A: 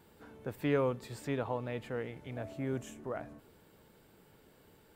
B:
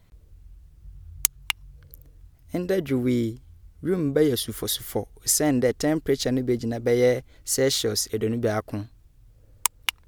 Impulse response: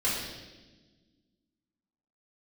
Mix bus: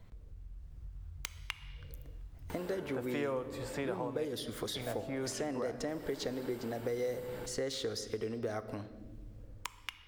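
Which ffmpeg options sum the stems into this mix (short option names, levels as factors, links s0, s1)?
-filter_complex "[0:a]acompressor=mode=upward:threshold=0.0112:ratio=2.5,adelay=2500,volume=1.26,asplit=3[s0][s1][s2];[s0]atrim=end=4.25,asetpts=PTS-STARTPTS,afade=t=out:st=4.246:d=0.004:c=hsin[s3];[s1]atrim=start=4.25:end=4.75,asetpts=PTS-STARTPTS,volume=0[s4];[s2]atrim=start=4.75,asetpts=PTS-STARTPTS,afade=t=in:d=0.004:c=hsin[s5];[s3][s4][s5]concat=n=3:v=0:a=1,asplit=2[s6][s7];[s7]volume=0.1[s8];[1:a]equalizer=f=12000:t=o:w=0.32:g=-8.5,acompressor=threshold=0.00251:ratio=1.5,volume=1.19,asplit=2[s9][s10];[s10]volume=0.0891[s11];[2:a]atrim=start_sample=2205[s12];[s8][s11]amix=inputs=2:normalize=0[s13];[s13][s12]afir=irnorm=-1:irlink=0[s14];[s6][s9][s14]amix=inputs=3:normalize=0,dynaudnorm=f=120:g=13:m=1.78,highshelf=f=2500:g=-8,acrossover=split=420|4900[s15][s16][s17];[s15]acompressor=threshold=0.00631:ratio=4[s18];[s16]acompressor=threshold=0.0141:ratio=4[s19];[s17]acompressor=threshold=0.00447:ratio=4[s20];[s18][s19][s20]amix=inputs=3:normalize=0"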